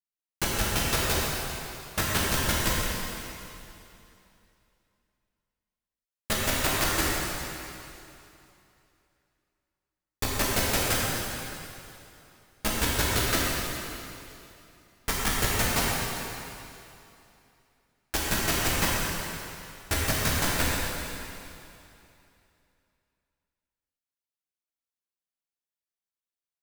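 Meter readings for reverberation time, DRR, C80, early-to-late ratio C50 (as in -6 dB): 2.8 s, -6.0 dB, -1.5 dB, -3.0 dB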